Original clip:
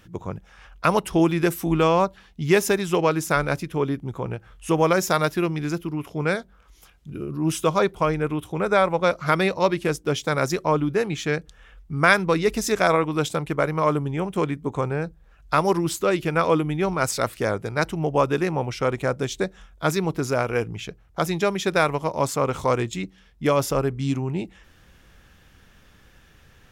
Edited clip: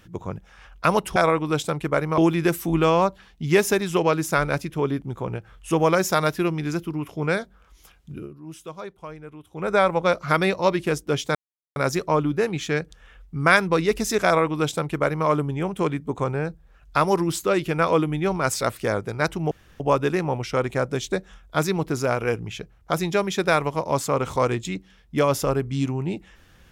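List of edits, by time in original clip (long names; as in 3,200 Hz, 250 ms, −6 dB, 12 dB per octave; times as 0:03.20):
0:07.11–0:08.70: duck −16 dB, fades 0.22 s
0:10.33: splice in silence 0.41 s
0:12.82–0:13.84: duplicate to 0:01.16
0:18.08: splice in room tone 0.29 s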